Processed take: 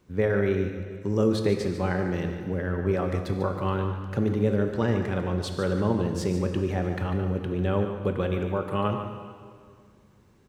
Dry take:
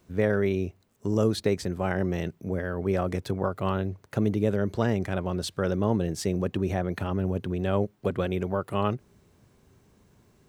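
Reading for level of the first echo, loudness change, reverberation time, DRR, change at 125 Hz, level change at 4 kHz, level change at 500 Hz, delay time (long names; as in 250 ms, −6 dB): −10.0 dB, +1.0 dB, 2.0 s, 4.0 dB, +1.5 dB, −1.0 dB, +1.0 dB, 146 ms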